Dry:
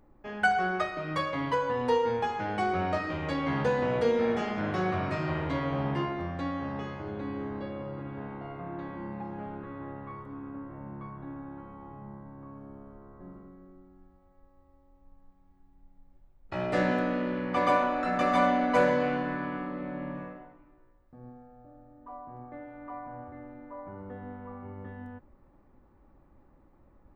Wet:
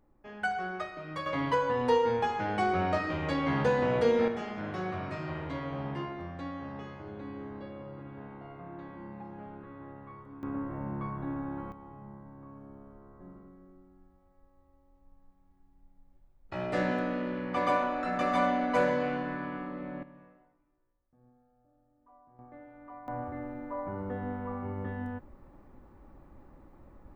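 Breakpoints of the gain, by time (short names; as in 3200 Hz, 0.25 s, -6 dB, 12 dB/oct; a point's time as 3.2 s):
-7 dB
from 1.26 s +0.5 dB
from 4.28 s -6 dB
from 10.43 s +5.5 dB
from 11.72 s -3 dB
from 20.03 s -16 dB
from 22.39 s -6.5 dB
from 23.08 s +6 dB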